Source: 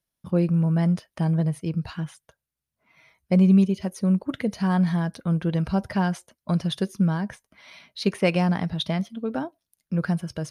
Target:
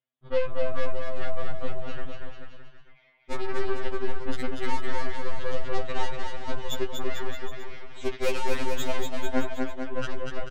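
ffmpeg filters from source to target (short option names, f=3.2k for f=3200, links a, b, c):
-af "highpass=180,aresample=8000,asoftclip=type=tanh:threshold=-17.5dB,aresample=44100,aeval=exprs='0.158*(cos(1*acos(clip(val(0)/0.158,-1,1)))-cos(1*PI/2))+0.0251*(cos(4*acos(clip(val(0)/0.158,-1,1)))-cos(4*PI/2))+0.0355*(cos(8*acos(clip(val(0)/0.158,-1,1)))-cos(8*PI/2))':c=same,aecho=1:1:240|444|617.4|764.8|890.1:0.631|0.398|0.251|0.158|0.1,afftfilt=real='re*2.45*eq(mod(b,6),0)':imag='im*2.45*eq(mod(b,6),0)':win_size=2048:overlap=0.75,volume=-2dB"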